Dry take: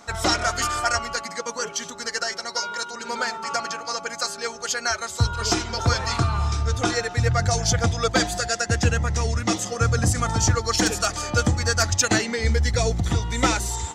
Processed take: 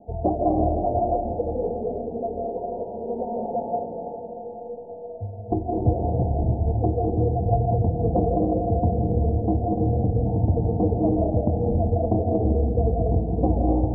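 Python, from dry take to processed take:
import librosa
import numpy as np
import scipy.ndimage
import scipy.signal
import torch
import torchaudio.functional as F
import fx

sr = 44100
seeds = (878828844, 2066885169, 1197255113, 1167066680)

y = scipy.signal.sosfilt(scipy.signal.butter(16, 790.0, 'lowpass', fs=sr, output='sos'), x)
y = fx.rider(y, sr, range_db=4, speed_s=0.5)
y = fx.stiff_resonator(y, sr, f0_hz=99.0, decay_s=0.73, stiffness=0.03, at=(3.82, 5.51))
y = fx.echo_diffused(y, sr, ms=857, feedback_pct=49, wet_db=-13.0)
y = fx.rev_freeverb(y, sr, rt60_s=1.9, hf_ratio=1.0, predelay_ms=115, drr_db=-2.0)
y = fx.doppler_dist(y, sr, depth_ms=0.16)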